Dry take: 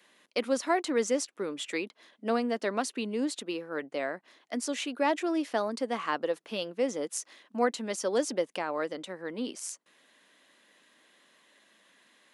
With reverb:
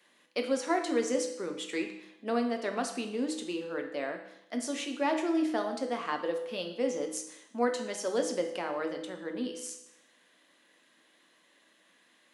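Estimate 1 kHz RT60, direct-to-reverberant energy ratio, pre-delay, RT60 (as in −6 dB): 0.80 s, 4.0 dB, 6 ms, 0.80 s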